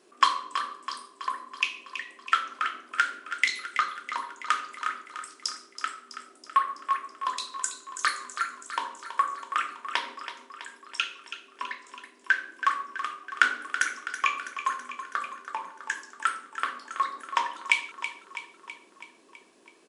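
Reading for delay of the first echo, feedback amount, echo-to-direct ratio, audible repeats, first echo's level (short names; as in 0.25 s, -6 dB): 0.327 s, 60%, -9.0 dB, 6, -11.0 dB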